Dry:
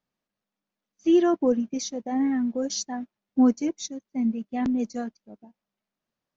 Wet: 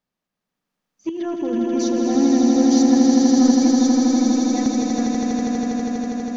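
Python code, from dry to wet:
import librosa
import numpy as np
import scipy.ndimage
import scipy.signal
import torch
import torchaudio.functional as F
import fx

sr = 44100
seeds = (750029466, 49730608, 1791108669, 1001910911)

y = fx.over_compress(x, sr, threshold_db=-26.0, ratio=-1.0, at=(1.09, 1.64))
y = fx.low_shelf(y, sr, hz=320.0, db=10.5, at=(2.15, 2.57))
y = 10.0 ** (-16.0 / 20.0) * np.tanh(y / 10.0 ** (-16.0 / 20.0))
y = fx.echo_swell(y, sr, ms=81, loudest=8, wet_db=-4)
y = y * librosa.db_to_amplitude(1.0)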